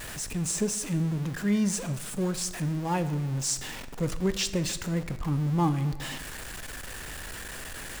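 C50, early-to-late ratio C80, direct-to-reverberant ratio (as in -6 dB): 13.5 dB, 15.0 dB, 11.0 dB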